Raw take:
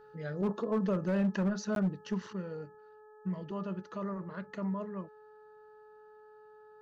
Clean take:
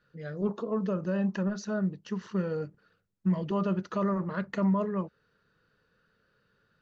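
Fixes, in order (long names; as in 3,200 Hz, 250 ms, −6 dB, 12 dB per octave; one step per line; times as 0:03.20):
clipped peaks rebuilt −25 dBFS
hum removal 427.3 Hz, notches 4
repair the gap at 0:01.75, 12 ms
level 0 dB, from 0:02.33 +9 dB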